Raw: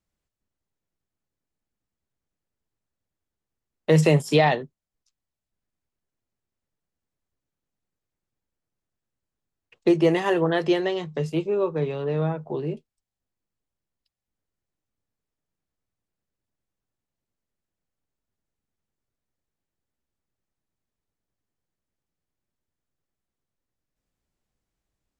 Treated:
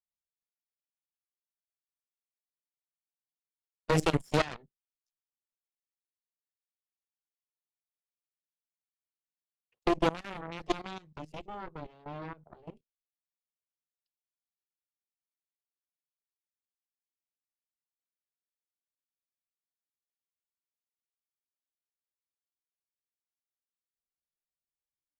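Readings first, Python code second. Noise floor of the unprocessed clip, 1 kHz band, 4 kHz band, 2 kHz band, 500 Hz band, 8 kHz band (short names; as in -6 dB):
under -85 dBFS, -7.0 dB, -7.5 dB, -9.0 dB, -12.5 dB, n/a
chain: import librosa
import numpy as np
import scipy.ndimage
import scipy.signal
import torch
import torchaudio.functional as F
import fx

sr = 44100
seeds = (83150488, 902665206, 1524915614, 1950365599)

y = fx.noise_reduce_blind(x, sr, reduce_db=11)
y = fx.cheby_harmonics(y, sr, harmonics=(2, 4, 5, 7), levels_db=(-13, -7, -36, -13), full_scale_db=-6.0)
y = fx.level_steps(y, sr, step_db=17)
y = y * 10.0 ** (-7.0 / 20.0)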